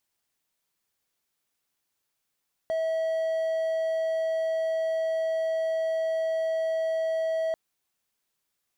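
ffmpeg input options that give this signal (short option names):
-f lavfi -i "aevalsrc='0.075*(1-4*abs(mod(647*t+0.25,1)-0.5))':d=4.84:s=44100"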